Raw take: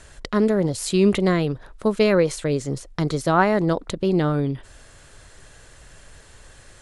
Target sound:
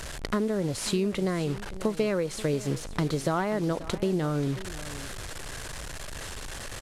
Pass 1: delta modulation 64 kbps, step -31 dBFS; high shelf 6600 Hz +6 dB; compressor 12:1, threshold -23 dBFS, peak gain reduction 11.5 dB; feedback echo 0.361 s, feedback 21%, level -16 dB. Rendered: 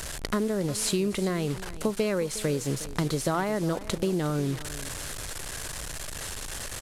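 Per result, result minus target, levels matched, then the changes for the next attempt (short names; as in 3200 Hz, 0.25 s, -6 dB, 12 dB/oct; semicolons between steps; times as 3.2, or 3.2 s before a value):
echo 0.173 s early; 8000 Hz band +5.0 dB
change: feedback echo 0.534 s, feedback 21%, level -16 dB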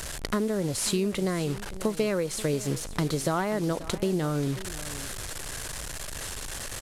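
8000 Hz band +5.0 dB
change: high shelf 6600 Hz -3.5 dB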